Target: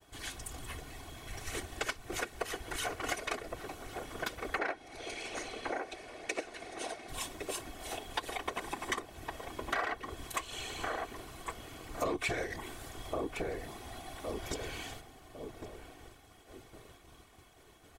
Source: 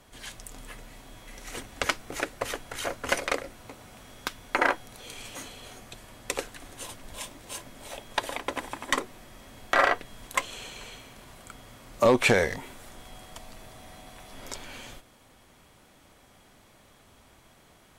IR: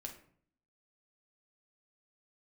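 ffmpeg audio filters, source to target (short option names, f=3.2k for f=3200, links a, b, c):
-filter_complex "[0:a]asettb=1/sr,asplit=3[a][b][c];[a]atrim=end=4.584[d];[b]atrim=start=4.58:end=7.09,asetpts=PTS-STARTPTS,afade=t=in:d=0.004:c=qsin,afade=t=out:st=2.506:d=0.004:c=qsin,highpass=280,equalizer=f=390:t=q:w=4:g=5,equalizer=f=620:t=q:w=4:g=7,equalizer=f=1.1k:t=q:w=4:g=-4,equalizer=f=2.2k:t=q:w=4:g=5,equalizer=f=3.2k:t=q:w=4:g=-4,equalizer=f=7.4k:t=q:w=4:g=-8,lowpass=f=8.8k:w=0.5412,lowpass=f=8.8k:w=1.3066[e];[c]atrim=start=7.086[f];[d][e]acrossfade=d=0.004:c1=hsin:c2=qsin[g];[g][f]acrossfade=d=0.004:c1=qsin:c2=hsin,asplit=2[h][i];[i]adelay=1109,lowpass=f=830:p=1,volume=-7dB,asplit=2[j][k];[k]adelay=1109,lowpass=f=830:p=1,volume=0.41,asplit=2[l][m];[m]adelay=1109,lowpass=f=830:p=1,volume=0.41,asplit=2[n][o];[o]adelay=1109,lowpass=f=830:p=1,volume=0.41,asplit=2[p][q];[q]adelay=1109,lowpass=f=830:p=1,volume=0.41[r];[h][j][l][n][p][r]amix=inputs=6:normalize=0,afftfilt=real='hypot(re,im)*cos(2*PI*random(0))':imag='hypot(re,im)*sin(2*PI*random(1))':win_size=512:overlap=0.75,agate=range=-33dB:threshold=-58dB:ratio=3:detection=peak,aecho=1:1:2.7:0.45,acompressor=threshold=-39dB:ratio=4,volume=5.5dB"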